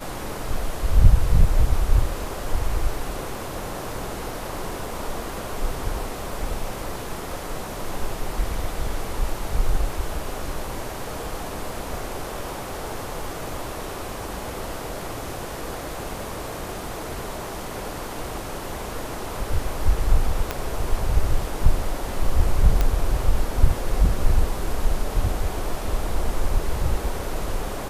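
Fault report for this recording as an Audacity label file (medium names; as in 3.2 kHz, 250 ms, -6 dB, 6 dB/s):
20.510000	20.510000	pop -9 dBFS
22.810000	22.810000	pop -8 dBFS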